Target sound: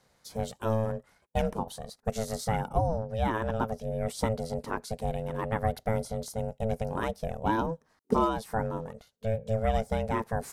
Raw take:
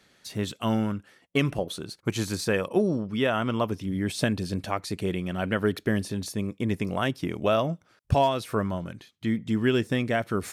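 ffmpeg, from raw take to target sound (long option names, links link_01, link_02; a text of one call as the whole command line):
ffmpeg -i in.wav -af "equalizer=frequency=2700:width=1.2:gain=-11.5,aeval=exprs='val(0)*sin(2*PI*330*n/s)':channel_layout=same" out.wav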